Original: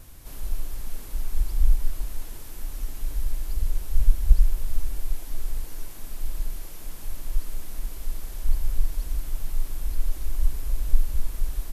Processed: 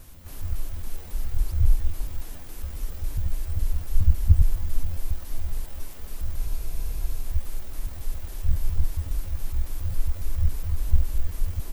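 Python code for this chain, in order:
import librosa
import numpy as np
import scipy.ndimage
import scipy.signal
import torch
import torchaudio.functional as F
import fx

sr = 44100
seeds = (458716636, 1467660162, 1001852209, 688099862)

y = fx.pitch_trill(x, sr, semitones=10.5, every_ms=138)
y = fx.echo_stepped(y, sr, ms=485, hz=340.0, octaves=1.4, feedback_pct=70, wet_db=-4.5)
y = fx.spec_freeze(y, sr, seeds[0], at_s=6.39, hold_s=0.84)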